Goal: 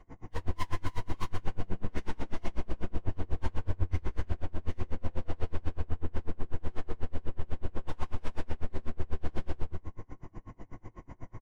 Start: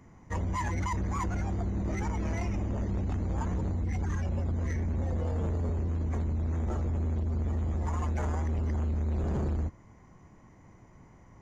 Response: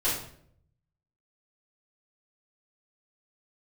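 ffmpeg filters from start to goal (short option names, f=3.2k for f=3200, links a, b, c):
-filter_complex "[0:a]aemphasis=mode=reproduction:type=50kf,aeval=exprs='(tanh(178*val(0)+0.4)-tanh(0.4))/178':c=same,aecho=1:1:144|288|432|576|720:0.355|0.16|0.0718|0.0323|0.0145[a];[1:a]atrim=start_sample=2205,atrim=end_sample=4410[b];[a][b]afir=irnorm=-1:irlink=0,aeval=exprs='val(0)*pow(10,-33*(0.5-0.5*cos(2*PI*8.1*n/s))/20)':c=same,volume=3.5dB"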